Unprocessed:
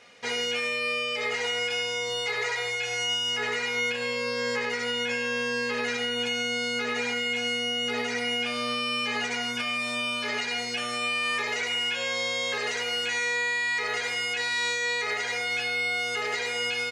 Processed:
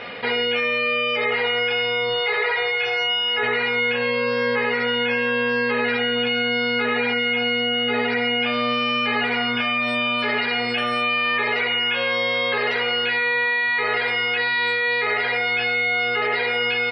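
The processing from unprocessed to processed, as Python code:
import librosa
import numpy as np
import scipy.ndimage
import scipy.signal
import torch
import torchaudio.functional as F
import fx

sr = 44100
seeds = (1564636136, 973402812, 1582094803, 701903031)

p1 = np.convolve(x, np.full(7, 1.0 / 7))[:len(x)]
p2 = fx.spec_gate(p1, sr, threshold_db=-30, keep='strong')
p3 = fx.hum_notches(p2, sr, base_hz=60, count=4, at=(2.13, 3.43))
p4 = p3 + fx.echo_banded(p3, sr, ms=449, feedback_pct=82, hz=1100.0, wet_db=-19.0, dry=0)
p5 = fx.env_flatten(p4, sr, amount_pct=50)
y = F.gain(torch.from_numpy(p5), 7.5).numpy()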